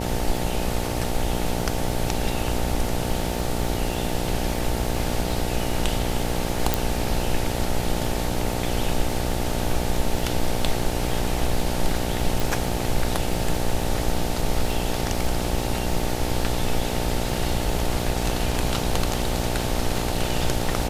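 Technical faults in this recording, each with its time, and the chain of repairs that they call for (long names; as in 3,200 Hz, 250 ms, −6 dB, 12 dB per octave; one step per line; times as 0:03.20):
mains buzz 60 Hz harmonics 15 −28 dBFS
surface crackle 58 per second −31 dBFS
0:06.74: click
0:12.40: click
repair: click removal
hum removal 60 Hz, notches 15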